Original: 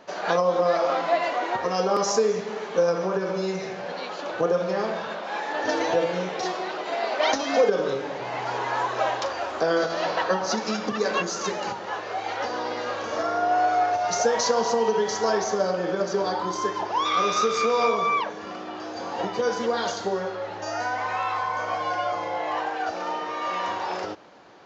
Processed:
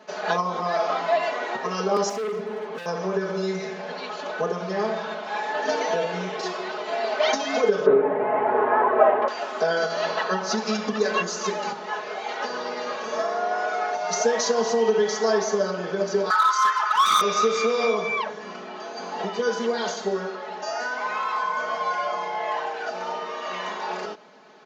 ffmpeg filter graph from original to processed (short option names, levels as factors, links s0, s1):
-filter_complex "[0:a]asettb=1/sr,asplit=3[s0][s1][s2];[s0]atrim=end=2.094[s3];[s1]atrim=start=2.09:end=2.86,asetpts=PTS-STARTPTS,afade=t=in:d=0.004:c=qsin,afade=t=out:st=0.766:d=0.004:c=qsin,lowpass=f=1600:p=1,asoftclip=type=hard:threshold=0.0355[s4];[s2]atrim=start=2.856[s5];[s3][s4]acrossfade=d=0.004:c1=hsin:c2=qsin[s6];[s6][s5]acrossfade=d=0.004:c1=qsin:c2=hsin,asettb=1/sr,asplit=3[s7][s8][s9];[s7]atrim=end=7.864[s10];[s8]atrim=start=7.86:end=9.28,asetpts=PTS-STARTPTS,afade=t=in:d=0.004:c=qsin,afade=t=out:st=1.416:d=0.004:c=qsin,lowpass=f=2100:w=0.5412,lowpass=f=2100:w=1.3066,equalizer=f=390:w=0.45:g=10.5[s11];[s9]atrim=start=9.276[s12];[s10][s11]acrossfade=d=0.004:c1=hsin:c2=qsin[s13];[s13][s12]acrossfade=d=0.004:c1=qsin:c2=hsin,asettb=1/sr,asplit=3[s14][s15][s16];[s14]atrim=end=16.304[s17];[s15]atrim=start=16.3:end=17.21,asetpts=PTS-STARTPTS,afade=t=in:d=0.004:c=qsin,afade=t=out:st=0.906:d=0.004:c=qsin,highpass=f=1300:t=q:w=14,highshelf=f=2100:g=4,asoftclip=type=hard:threshold=0.158[s18];[s16]atrim=start=17.206[s19];[s17][s18]acrossfade=d=0.004:c1=hsin:c2=qsin[s20];[s20][s19]acrossfade=d=0.004:c1=qsin:c2=hsin,highpass=150,aecho=1:1:4.7:0.96,volume=0.75"